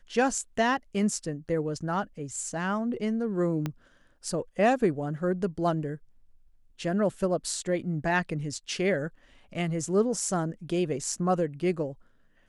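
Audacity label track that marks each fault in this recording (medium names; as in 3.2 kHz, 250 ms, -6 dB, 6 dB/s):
3.660000	3.660000	pop -17 dBFS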